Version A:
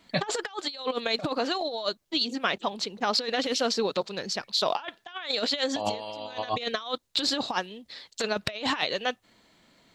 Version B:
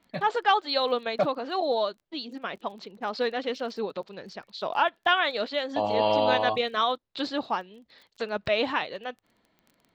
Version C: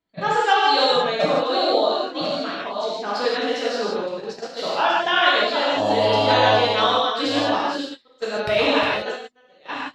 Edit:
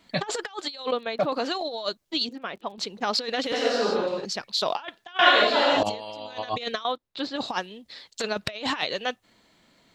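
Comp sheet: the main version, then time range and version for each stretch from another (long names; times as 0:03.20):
A
0:00.92–0:01.32: punch in from B
0:02.29–0:02.78: punch in from B
0:03.52–0:04.25: punch in from C
0:05.19–0:05.83: punch in from C
0:06.85–0:07.36: punch in from B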